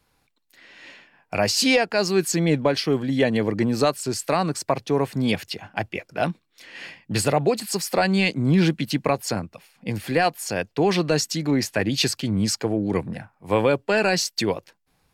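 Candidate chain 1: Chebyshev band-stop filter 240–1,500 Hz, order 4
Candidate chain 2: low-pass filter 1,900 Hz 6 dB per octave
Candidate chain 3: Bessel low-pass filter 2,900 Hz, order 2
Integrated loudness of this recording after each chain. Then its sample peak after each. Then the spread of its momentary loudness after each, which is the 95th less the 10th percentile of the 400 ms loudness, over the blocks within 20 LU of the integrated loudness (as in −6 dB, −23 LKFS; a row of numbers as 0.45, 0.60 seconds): −26.5, −24.0, −23.5 LKFS; −9.0, −9.0, −8.5 dBFS; 12, 11, 11 LU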